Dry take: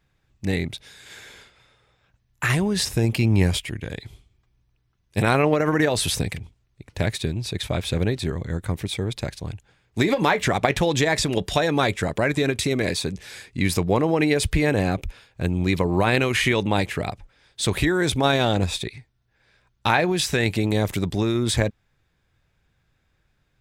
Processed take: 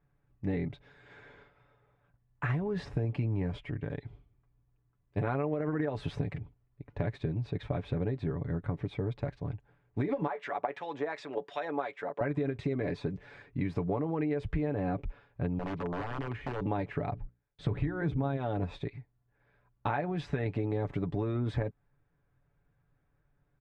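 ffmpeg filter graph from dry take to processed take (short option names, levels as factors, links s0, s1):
-filter_complex "[0:a]asettb=1/sr,asplit=3[s0][s1][s2];[s0]atrim=end=10.274[s3];[s1]atrim=start=10.27:end=12.21,asetpts=PTS-STARTPTS,afade=t=in:d=0.004:c=qsin,afade=t=out:st=1.936:d=0.004:c=qsin,highpass=520,acrossover=split=1400[s4][s5];[s4]aeval=exprs='val(0)*(1-0.7/2+0.7/2*cos(2*PI*2.7*n/s))':c=same[s6];[s5]aeval=exprs='val(0)*(1-0.7/2-0.7/2*cos(2*PI*2.7*n/s))':c=same[s7];[s6][s7]amix=inputs=2:normalize=0[s8];[s2]atrim=start=12.206[s9];[s3][s8]acrossfade=d=0.004:c1=hsin:c2=qsin[s10];[s10][s9]acrossfade=d=0.004:c1=qsin:c2=hsin,asettb=1/sr,asplit=3[s11][s12][s13];[s11]atrim=end=15.594[s14];[s12]atrim=start=15.59:end=16.61,asetpts=PTS-STARTPTS,afade=t=in:d=0.004:c=qsin,afade=t=out:st=1.016:d=0.004:c=qsin,acrossover=split=98|820[s15][s16][s17];[s15]acompressor=threshold=0.00794:ratio=4[s18];[s16]acompressor=threshold=0.0398:ratio=4[s19];[s17]acompressor=threshold=0.0158:ratio=4[s20];[s18][s19][s20]amix=inputs=3:normalize=0,aeval=exprs='(mod(11.2*val(0)+1,2)-1)/11.2':c=same[s21];[s13]atrim=start=16.606[s22];[s14][s21]acrossfade=d=0.004:c1=hsin:c2=qsin[s23];[s23][s22]acrossfade=d=0.004:c1=qsin:c2=hsin,asettb=1/sr,asplit=3[s24][s25][s26];[s24]atrim=end=17.114[s27];[s25]atrim=start=17.11:end=18.37,asetpts=PTS-STARTPTS,afade=t=in:d=0.004:c=qsin,afade=t=out:st=1.256:d=0.004:c=qsin,agate=range=0.0794:threshold=0.00282:ratio=16:release=100:detection=peak,bass=f=250:g=8,treble=f=4000:g=-3,bandreject=f=60:t=h:w=6,bandreject=f=120:t=h:w=6,bandreject=f=180:t=h:w=6,bandreject=f=240:t=h:w=6,bandreject=f=300:t=h:w=6,bandreject=f=360:t=h:w=6,bandreject=f=420:t=h:w=6,bandreject=f=480:t=h:w=6[s28];[s26]atrim=start=18.366[s29];[s27][s28]acrossfade=d=0.004:c1=hsin:c2=qsin[s30];[s30][s29]acrossfade=d=0.004:c1=qsin:c2=hsin,lowpass=1300,aecho=1:1:7:0.53,acompressor=threshold=0.0708:ratio=6,volume=0.562"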